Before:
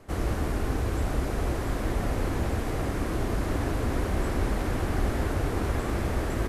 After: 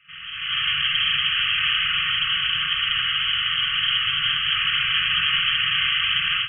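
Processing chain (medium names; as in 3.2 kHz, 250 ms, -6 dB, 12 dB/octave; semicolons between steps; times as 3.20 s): tracing distortion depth 0.16 ms; high-pass 63 Hz 24 dB/octave; peak limiter -28 dBFS, peak gain reduction 11 dB; 2.01–4.52 s: peaking EQ 680 Hz -4 dB 1.7 oct; short-mantissa float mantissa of 2-bit; tilt EQ +2.5 dB/octave; reverberation RT60 1.3 s, pre-delay 4 ms, DRR -3 dB; frequency inversion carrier 3.2 kHz; FFT band-reject 180–1100 Hz; level rider gain up to 15.5 dB; trim -3 dB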